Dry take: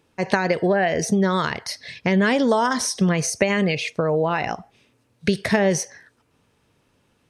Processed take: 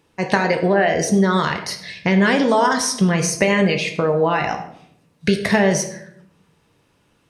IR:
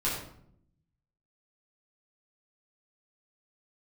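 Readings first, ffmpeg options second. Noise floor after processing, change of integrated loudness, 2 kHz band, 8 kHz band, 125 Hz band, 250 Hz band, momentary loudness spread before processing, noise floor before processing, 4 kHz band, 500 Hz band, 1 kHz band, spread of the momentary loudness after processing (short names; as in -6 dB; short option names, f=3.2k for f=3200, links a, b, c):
-62 dBFS, +3.0 dB, +3.5 dB, +3.0 dB, +3.0 dB, +3.0 dB, 9 LU, -65 dBFS, +3.5 dB, +3.0 dB, +4.0 dB, 9 LU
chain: -filter_complex "[0:a]asplit=2[a][b];[1:a]atrim=start_sample=2205,lowshelf=f=190:g=-10.5[c];[b][c]afir=irnorm=-1:irlink=0,volume=-9dB[d];[a][d]amix=inputs=2:normalize=0"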